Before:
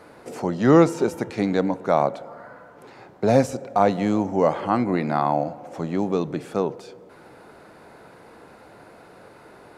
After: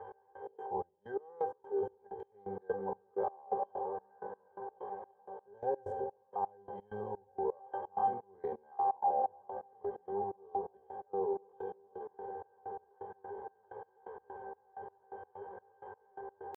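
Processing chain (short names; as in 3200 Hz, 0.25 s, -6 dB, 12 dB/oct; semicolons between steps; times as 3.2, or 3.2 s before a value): Wiener smoothing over 9 samples; bell 190 Hz -8 dB 0.88 oct; octave resonator G, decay 0.13 s; Schroeder reverb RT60 1.6 s, combs from 31 ms, DRR 15.5 dB; reverse; compressor 5:1, threshold -46 dBFS, peak gain reduction 20.5 dB; reverse; graphic EQ 125/250/500/1000/2000/4000/8000 Hz -8/-11/+11/+11/-6/-8/+6 dB; on a send: diffused feedback echo 0.902 s, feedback 43%, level -11 dB; on the sum: tempo 0.59×; step gate "x..x.xx.." 128 bpm -24 dB; mismatched tape noise reduction encoder only; gain +7 dB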